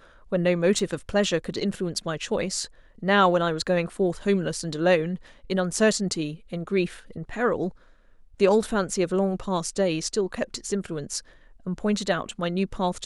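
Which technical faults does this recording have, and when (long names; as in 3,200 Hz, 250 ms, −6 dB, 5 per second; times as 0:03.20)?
0:00.79: drop-out 2.5 ms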